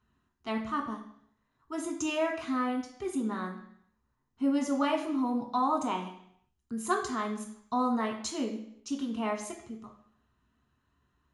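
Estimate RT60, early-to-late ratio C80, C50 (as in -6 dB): 0.70 s, 11.0 dB, 8.0 dB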